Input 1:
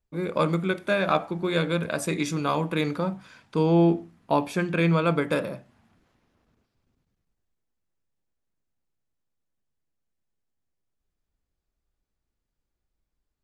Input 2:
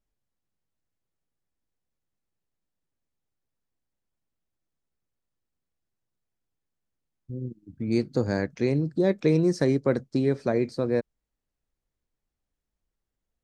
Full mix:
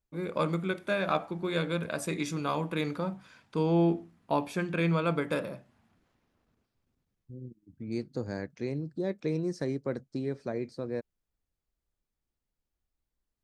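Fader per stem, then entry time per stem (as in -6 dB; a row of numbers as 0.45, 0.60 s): -5.5, -9.5 dB; 0.00, 0.00 s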